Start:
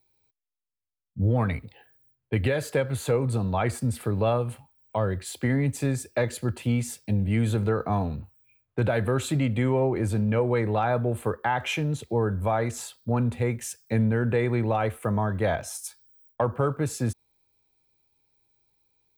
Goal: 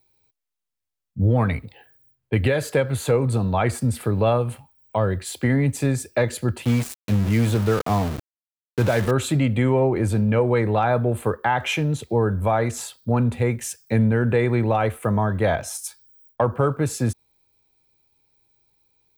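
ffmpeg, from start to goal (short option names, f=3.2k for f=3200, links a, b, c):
-filter_complex "[0:a]asettb=1/sr,asplit=3[a][b][c];[a]atrim=end=6.654[d];[b]atrim=start=6.65:end=9.11,asetpts=PTS-STARTPTS,afade=t=in:d=0.004:c=qsin,afade=t=out:st=2.456:d=0.004:c=qsin,aeval=exprs='val(0)*gte(abs(val(0)),0.0266)':c=same[e];[c]atrim=start=9.106[f];[d][e]acrossfade=d=0.004:c1=hsin:c2=qsin[g];[g][f]acrossfade=d=0.004:c1=qsin:c2=hsin,volume=4.5dB"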